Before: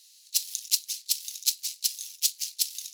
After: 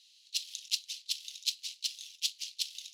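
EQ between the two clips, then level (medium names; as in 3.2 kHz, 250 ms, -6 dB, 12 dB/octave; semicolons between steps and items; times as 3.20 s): band-pass filter 3.1 kHz, Q 2.5; +2.5 dB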